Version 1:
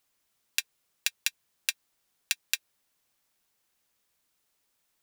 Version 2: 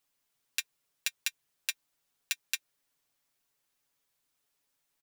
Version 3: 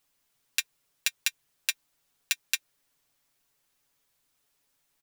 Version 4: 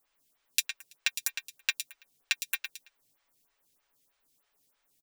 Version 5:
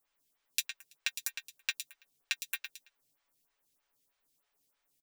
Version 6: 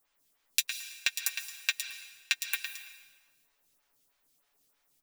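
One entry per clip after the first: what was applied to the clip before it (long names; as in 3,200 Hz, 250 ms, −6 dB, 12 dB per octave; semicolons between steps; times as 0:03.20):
comb filter 7.1 ms, depth 68%; level −5.5 dB
low-shelf EQ 120 Hz +4.5 dB; level +5 dB
repeating echo 110 ms, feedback 29%, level −9 dB; phaser with staggered stages 3.2 Hz; level +3 dB
double-tracking delay 14 ms −12 dB; level −5 dB
comb and all-pass reverb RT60 1.2 s, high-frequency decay 1×, pre-delay 95 ms, DRR 10 dB; level +5 dB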